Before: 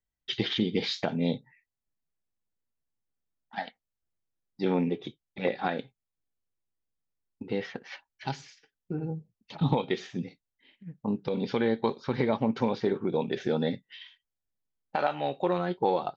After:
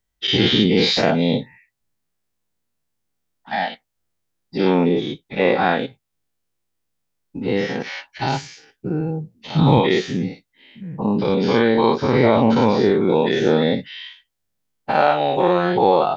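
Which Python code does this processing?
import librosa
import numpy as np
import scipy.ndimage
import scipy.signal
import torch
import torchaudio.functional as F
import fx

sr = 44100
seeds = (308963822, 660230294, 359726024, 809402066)

y = fx.spec_dilate(x, sr, span_ms=120)
y = y * librosa.db_to_amplitude(7.0)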